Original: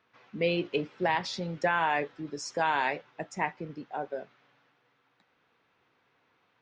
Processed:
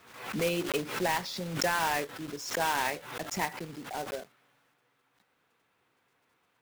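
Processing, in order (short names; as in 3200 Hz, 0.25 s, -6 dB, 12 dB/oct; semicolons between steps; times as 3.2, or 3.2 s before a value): block floating point 3-bit; backwards sustainer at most 77 dB/s; gain -2.5 dB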